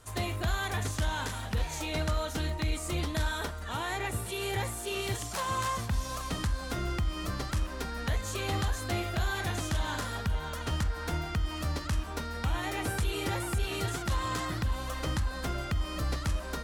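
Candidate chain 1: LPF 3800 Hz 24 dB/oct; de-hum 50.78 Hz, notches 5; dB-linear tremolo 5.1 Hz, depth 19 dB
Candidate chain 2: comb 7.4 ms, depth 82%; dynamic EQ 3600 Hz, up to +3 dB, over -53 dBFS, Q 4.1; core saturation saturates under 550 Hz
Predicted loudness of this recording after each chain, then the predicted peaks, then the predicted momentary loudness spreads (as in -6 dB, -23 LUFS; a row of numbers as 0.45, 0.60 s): -39.0, -34.0 LUFS; -21.5, -18.0 dBFS; 4, 5 LU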